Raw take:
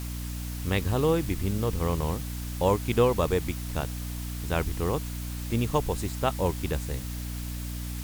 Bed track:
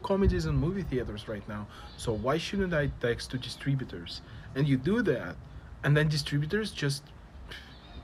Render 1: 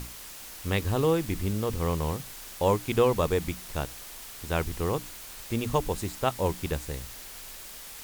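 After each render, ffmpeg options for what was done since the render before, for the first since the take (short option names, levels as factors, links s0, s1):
-af "bandreject=f=60:t=h:w=6,bandreject=f=120:t=h:w=6,bandreject=f=180:t=h:w=6,bandreject=f=240:t=h:w=6,bandreject=f=300:t=h:w=6"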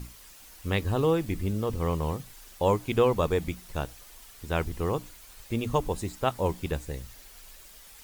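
-af "afftdn=nr=9:nf=-44"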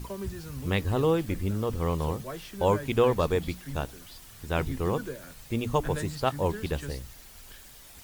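-filter_complex "[1:a]volume=0.299[s0];[0:a][s0]amix=inputs=2:normalize=0"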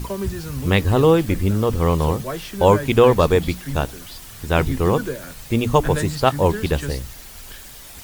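-af "volume=3.16,alimiter=limit=0.891:level=0:latency=1"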